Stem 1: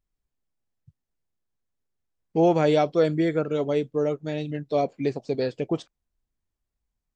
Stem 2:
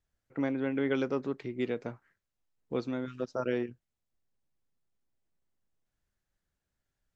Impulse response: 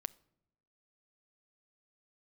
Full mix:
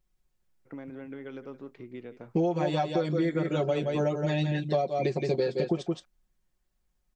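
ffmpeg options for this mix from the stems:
-filter_complex "[0:a]aecho=1:1:5.5:0.99,volume=1.33,asplit=2[s0][s1];[s1]volume=0.422[s2];[1:a]highshelf=f=5700:g=-11,acompressor=threshold=0.0158:ratio=3,adelay=350,volume=0.631,asplit=2[s3][s4];[s4]volume=0.188[s5];[s2][s5]amix=inputs=2:normalize=0,aecho=0:1:171:1[s6];[s0][s3][s6]amix=inputs=3:normalize=0,acompressor=threshold=0.0708:ratio=16"

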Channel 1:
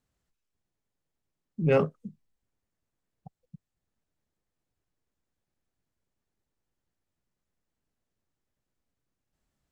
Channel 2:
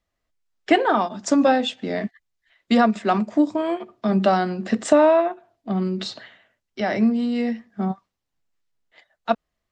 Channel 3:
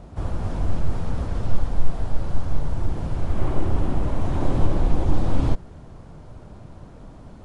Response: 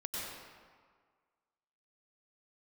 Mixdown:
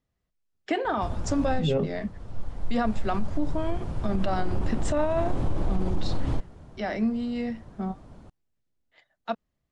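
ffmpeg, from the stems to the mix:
-filter_complex "[0:a]lowpass=2100,equalizer=f=1500:t=o:w=2:g=-14,volume=1.19,asplit=2[s0][s1];[1:a]volume=0.447[s2];[2:a]adelay=850,volume=0.562[s3];[s1]apad=whole_len=365913[s4];[s3][s4]sidechaincompress=threshold=0.00891:ratio=3:attack=16:release=863[s5];[s0][s2][s5]amix=inputs=3:normalize=0,alimiter=limit=0.15:level=0:latency=1:release=31"

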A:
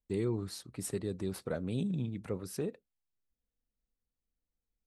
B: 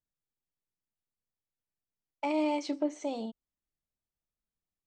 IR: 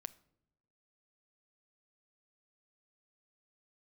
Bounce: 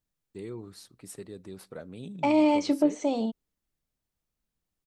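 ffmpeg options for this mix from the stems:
-filter_complex "[0:a]adelay=250,volume=0.473,asplit=2[s0][s1];[s1]volume=0.447[s2];[1:a]lowshelf=f=260:g=11.5,acontrast=61,volume=0.891[s3];[2:a]atrim=start_sample=2205[s4];[s2][s4]afir=irnorm=-1:irlink=0[s5];[s0][s3][s5]amix=inputs=3:normalize=0,lowshelf=f=160:g=-8"

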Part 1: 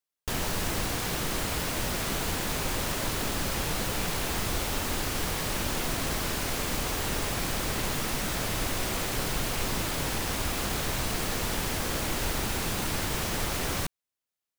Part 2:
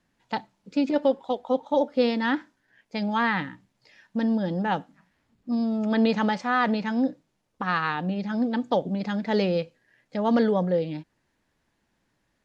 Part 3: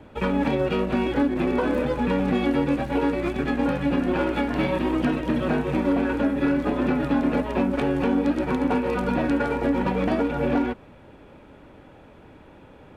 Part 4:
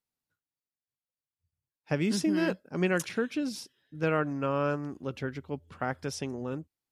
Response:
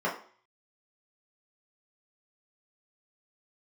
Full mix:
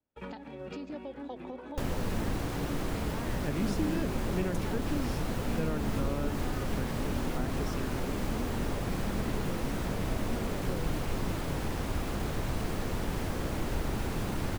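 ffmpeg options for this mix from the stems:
-filter_complex "[0:a]highshelf=f=2200:g=-11,adelay=1500,volume=1.06[s0];[1:a]acompressor=threshold=0.0355:ratio=4,volume=0.668[s1];[2:a]volume=0.141[s2];[3:a]adelay=1550,volume=0.562[s3];[s1][s2]amix=inputs=2:normalize=0,agate=range=0.0501:threshold=0.002:ratio=16:detection=peak,alimiter=level_in=2.11:limit=0.0631:level=0:latency=1:release=387,volume=0.473,volume=1[s4];[s0][s3][s4]amix=inputs=3:normalize=0,acrossover=split=450[s5][s6];[s6]acompressor=threshold=0.0126:ratio=6[s7];[s5][s7]amix=inputs=2:normalize=0"

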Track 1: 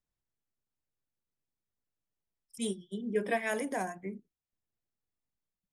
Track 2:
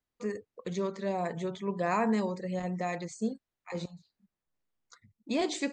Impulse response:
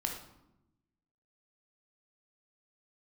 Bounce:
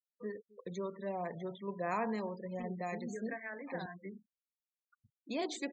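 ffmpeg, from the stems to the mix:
-filter_complex "[0:a]acompressor=threshold=0.0126:ratio=1.5,alimiter=level_in=2.51:limit=0.0631:level=0:latency=1:release=482,volume=0.398,lowpass=f=1700:t=q:w=2.3,volume=0.631,asplit=2[s0][s1];[s1]volume=0.0794[s2];[1:a]acrossover=split=330[s3][s4];[s3]acompressor=threshold=0.00794:ratio=1.5[s5];[s5][s4]amix=inputs=2:normalize=0,volume=0.501,asplit=2[s6][s7];[s7]volume=0.0794[s8];[2:a]atrim=start_sample=2205[s9];[s2][s9]afir=irnorm=-1:irlink=0[s10];[s8]aecho=0:1:260|520|780|1040|1300:1|0.33|0.109|0.0359|0.0119[s11];[s0][s6][s10][s11]amix=inputs=4:normalize=0,afftfilt=real='re*gte(hypot(re,im),0.00501)':imag='im*gte(hypot(re,im),0.00501)':win_size=1024:overlap=0.75"

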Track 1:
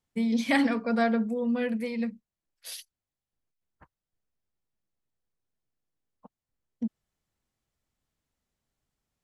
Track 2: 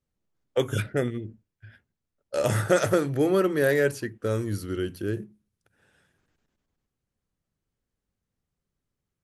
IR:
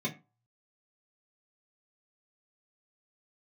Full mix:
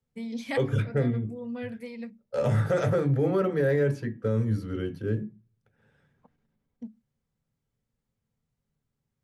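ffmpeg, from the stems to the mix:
-filter_complex "[0:a]volume=0.447,asplit=2[s0][s1];[s1]volume=0.0631[s2];[1:a]lowpass=f=2200:p=1,volume=0.794,asplit=3[s3][s4][s5];[s4]volume=0.422[s6];[s5]apad=whole_len=407209[s7];[s0][s7]sidechaincompress=threshold=0.02:ratio=8:attack=16:release=514[s8];[2:a]atrim=start_sample=2205[s9];[s2][s6]amix=inputs=2:normalize=0[s10];[s10][s9]afir=irnorm=-1:irlink=0[s11];[s8][s3][s11]amix=inputs=3:normalize=0,alimiter=limit=0.15:level=0:latency=1:release=27"

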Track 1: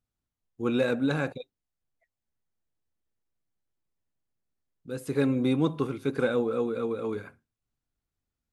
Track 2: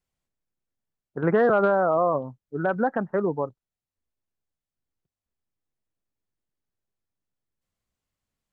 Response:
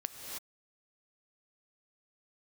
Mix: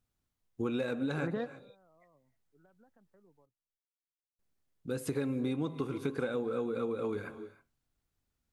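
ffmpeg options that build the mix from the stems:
-filter_complex "[0:a]volume=1.26,asplit=3[s0][s1][s2];[s0]atrim=end=3.46,asetpts=PTS-STARTPTS,afade=t=out:st=3.456:d=0.004:c=hsin[s3];[s1]atrim=start=3.46:end=4.39,asetpts=PTS-STARTPTS,volume=0[s4];[s2]atrim=start=4.39,asetpts=PTS-STARTPTS,afade=t=in:d=0.004:c=hsin[s5];[s3][s4][s5]concat=n=3:v=0:a=1,asplit=3[s6][s7][s8];[s7]volume=0.224[s9];[1:a]acrossover=split=270|3000[s10][s11][s12];[s11]acompressor=threshold=0.0398:ratio=6[s13];[s10][s13][s12]amix=inputs=3:normalize=0,volume=1.12[s14];[s8]apad=whole_len=376140[s15];[s14][s15]sidechaingate=range=0.0126:threshold=0.0126:ratio=16:detection=peak[s16];[2:a]atrim=start_sample=2205[s17];[s9][s17]afir=irnorm=-1:irlink=0[s18];[s6][s16][s18]amix=inputs=3:normalize=0,acompressor=threshold=0.0282:ratio=6"

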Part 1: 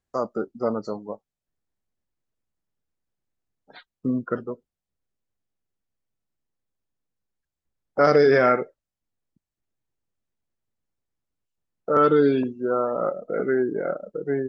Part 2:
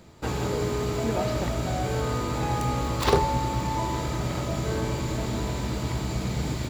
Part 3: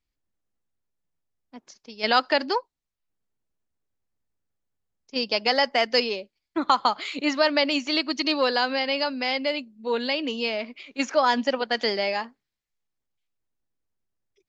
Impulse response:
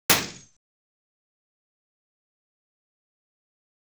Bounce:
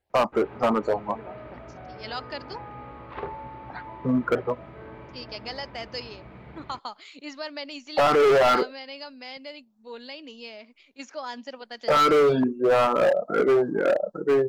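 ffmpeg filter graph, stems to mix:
-filter_complex "[0:a]equalizer=f=840:w=0.85:g=12,alimiter=limit=0.473:level=0:latency=1:release=11,asplit=2[s0][s1];[s1]afreqshift=2.3[s2];[s0][s2]amix=inputs=2:normalize=1,volume=1.41[s3];[1:a]lowpass=f=2400:w=0.5412,lowpass=f=2400:w=1.3066,lowshelf=f=270:g=-10,adelay=100,volume=0.299[s4];[2:a]bass=f=250:g=0,treble=f=4000:g=4,volume=0.188[s5];[s3][s4][s5]amix=inputs=3:normalize=0,asoftclip=type=hard:threshold=0.158"

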